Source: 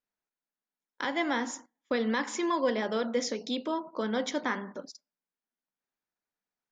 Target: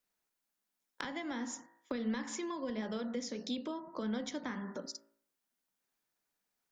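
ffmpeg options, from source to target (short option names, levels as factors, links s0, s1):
-filter_complex "[0:a]highshelf=f=5000:g=5.5,bandreject=f=56.11:t=h:w=4,bandreject=f=112.22:t=h:w=4,bandreject=f=168.33:t=h:w=4,bandreject=f=224.44:t=h:w=4,bandreject=f=280.55:t=h:w=4,bandreject=f=336.66:t=h:w=4,bandreject=f=392.77:t=h:w=4,bandreject=f=448.88:t=h:w=4,bandreject=f=504.99:t=h:w=4,bandreject=f=561.1:t=h:w=4,bandreject=f=617.21:t=h:w=4,bandreject=f=673.32:t=h:w=4,bandreject=f=729.43:t=h:w=4,bandreject=f=785.54:t=h:w=4,bandreject=f=841.65:t=h:w=4,bandreject=f=897.76:t=h:w=4,bandreject=f=953.87:t=h:w=4,bandreject=f=1009.98:t=h:w=4,bandreject=f=1066.09:t=h:w=4,bandreject=f=1122.2:t=h:w=4,bandreject=f=1178.31:t=h:w=4,bandreject=f=1234.42:t=h:w=4,bandreject=f=1290.53:t=h:w=4,bandreject=f=1346.64:t=h:w=4,bandreject=f=1402.75:t=h:w=4,bandreject=f=1458.86:t=h:w=4,bandreject=f=1514.97:t=h:w=4,bandreject=f=1571.08:t=h:w=4,bandreject=f=1627.19:t=h:w=4,bandreject=f=1683.3:t=h:w=4,bandreject=f=1739.41:t=h:w=4,bandreject=f=1795.52:t=h:w=4,bandreject=f=1851.63:t=h:w=4,bandreject=f=1907.74:t=h:w=4,bandreject=f=1963.85:t=h:w=4,acrossover=split=180[s0][s1];[s1]acompressor=threshold=0.00708:ratio=16[s2];[s0][s2]amix=inputs=2:normalize=0,volume=1.68"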